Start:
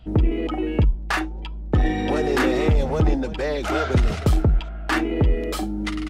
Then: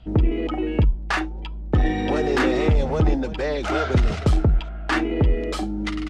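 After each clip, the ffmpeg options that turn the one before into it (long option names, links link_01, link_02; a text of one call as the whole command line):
ffmpeg -i in.wav -af "lowpass=7400" out.wav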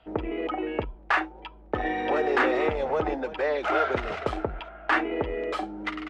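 ffmpeg -i in.wav -filter_complex "[0:a]acrossover=split=390 2800:gain=0.0891 1 0.158[link_01][link_02][link_03];[link_01][link_02][link_03]amix=inputs=3:normalize=0,volume=1.5dB" out.wav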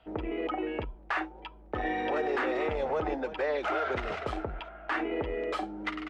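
ffmpeg -i in.wav -af "alimiter=limit=-19dB:level=0:latency=1:release=32,volume=-2.5dB" out.wav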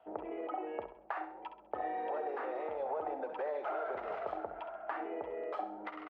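ffmpeg -i in.wav -filter_complex "[0:a]acompressor=threshold=-34dB:ratio=6,bandpass=frequency=730:width_type=q:width=1.6:csg=0,asplit=2[link_01][link_02];[link_02]aecho=0:1:66|132|198|264:0.316|0.133|0.0558|0.0234[link_03];[link_01][link_03]amix=inputs=2:normalize=0,volume=3dB" out.wav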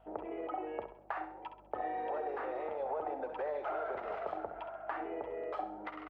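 ffmpeg -i in.wav -af "aeval=exprs='val(0)+0.000501*(sin(2*PI*50*n/s)+sin(2*PI*2*50*n/s)/2+sin(2*PI*3*50*n/s)/3+sin(2*PI*4*50*n/s)/4+sin(2*PI*5*50*n/s)/5)':channel_layout=same" out.wav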